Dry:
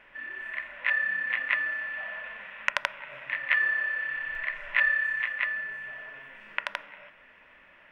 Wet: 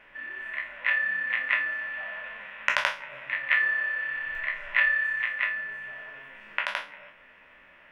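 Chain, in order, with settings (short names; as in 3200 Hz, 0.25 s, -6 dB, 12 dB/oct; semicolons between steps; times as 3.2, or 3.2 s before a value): spectral trails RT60 0.32 s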